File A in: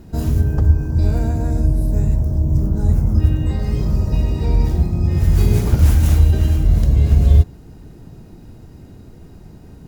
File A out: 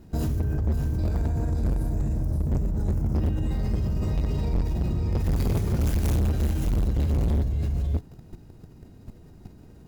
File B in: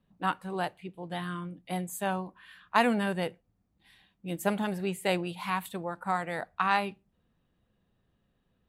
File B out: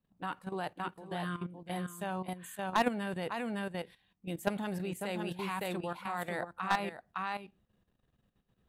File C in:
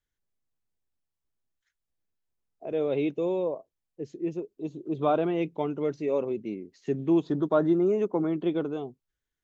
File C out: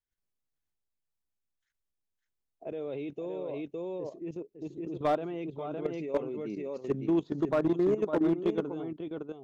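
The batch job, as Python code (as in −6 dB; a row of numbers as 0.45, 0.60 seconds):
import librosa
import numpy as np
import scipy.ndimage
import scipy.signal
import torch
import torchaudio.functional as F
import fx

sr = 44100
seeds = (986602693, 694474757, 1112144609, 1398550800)

y = x + 10.0 ** (-5.0 / 20.0) * np.pad(x, (int(561 * sr / 1000.0), 0))[:len(x)]
y = fx.level_steps(y, sr, step_db=12)
y = np.clip(y, -10.0 ** (-20.5 / 20.0), 10.0 ** (-20.5 / 20.0))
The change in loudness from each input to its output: −9.5, −5.5, −4.0 LU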